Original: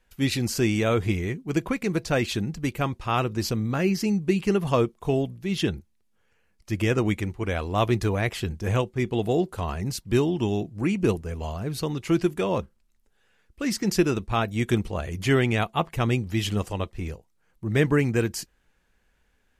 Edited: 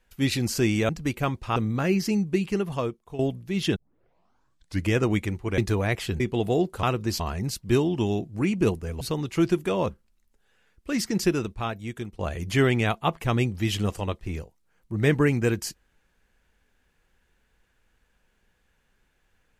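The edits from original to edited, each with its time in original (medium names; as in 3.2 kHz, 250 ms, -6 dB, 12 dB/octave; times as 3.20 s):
0.89–2.47 s: delete
3.14–3.51 s: move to 9.62 s
4.08–5.14 s: fade out, to -14 dB
5.71 s: tape start 1.15 s
7.53–7.92 s: delete
8.54–8.99 s: delete
11.43–11.73 s: delete
13.74–14.91 s: fade out, to -17 dB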